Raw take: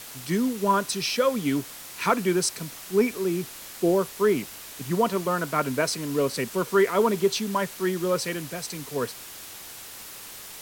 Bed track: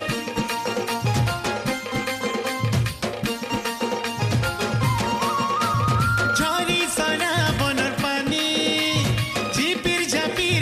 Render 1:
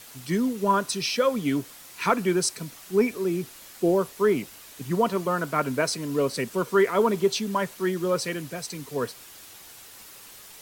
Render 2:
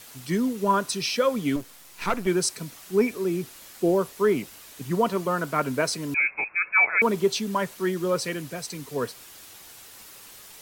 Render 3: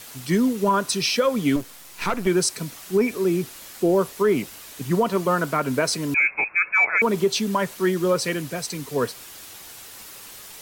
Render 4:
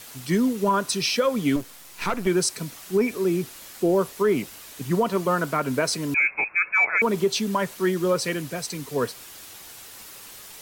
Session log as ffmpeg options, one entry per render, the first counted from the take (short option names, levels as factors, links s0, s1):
-af "afftdn=nr=6:nf=-42"
-filter_complex "[0:a]asettb=1/sr,asplit=3[s0][s1][s2];[s0]atrim=end=1.564[s3];[s1]atrim=start=1.56:end=2.27,asetpts=PTS-STARTPTS,afade=t=in:d=0.004:c=qsin,afade=t=out:st=0.706:d=0.004:c=qsin,aeval=exprs='if(lt(val(0),0),0.251*val(0),val(0))':c=same[s4];[s2]atrim=start=2.266[s5];[s3][s4]acrossfade=d=0.004:c1=hsin:c2=qsin[s6];[s6][s5]acrossfade=d=0.004:c1=qsin:c2=hsin,asettb=1/sr,asplit=3[s7][s8][s9];[s7]atrim=end=6.144[s10];[s8]atrim=start=6.14:end=7.02,asetpts=PTS-STARTPTS,afade=t=in:d=0.004:c=qsin,afade=t=out:st=0.876:d=0.004:c=qsin,lowpass=f=2300:t=q:w=0.5098,lowpass=f=2300:t=q:w=0.6013,lowpass=f=2300:t=q:w=0.9,lowpass=f=2300:t=q:w=2.563,afreqshift=-2700[s11];[s9]atrim=start=7.016[s12];[s10][s11]acrossfade=d=0.004:c1=hsin:c2=qsin[s13];[s13][s12]acrossfade=d=0.004:c1=qsin:c2=hsin"
-af "acontrast=23,alimiter=limit=0.282:level=0:latency=1:release=135"
-af "volume=0.841"